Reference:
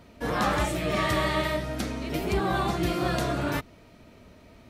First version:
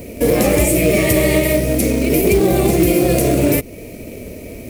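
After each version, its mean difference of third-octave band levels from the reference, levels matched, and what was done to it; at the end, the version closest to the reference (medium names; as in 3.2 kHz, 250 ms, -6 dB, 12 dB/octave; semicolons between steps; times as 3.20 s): 6.5 dB: FFT filter 120 Hz 0 dB, 170 Hz -1 dB, 510 Hz +7 dB, 940 Hz -15 dB, 1.5 kHz -19 dB, 2.3 kHz +3 dB, 3.5 kHz -11 dB, 11 kHz +13 dB; in parallel at +1.5 dB: compression 20:1, threshold -36 dBFS, peak gain reduction 18.5 dB; on the sum: short-mantissa float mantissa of 2-bit; loudness maximiser +15.5 dB; trim -3.5 dB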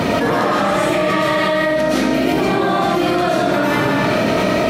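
10.0 dB: high-pass 150 Hz 12 dB/octave; treble shelf 4.8 kHz -7 dB; algorithmic reverb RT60 0.88 s, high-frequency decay 0.95×, pre-delay 85 ms, DRR -9 dB; level flattener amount 100%; trim -3 dB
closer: first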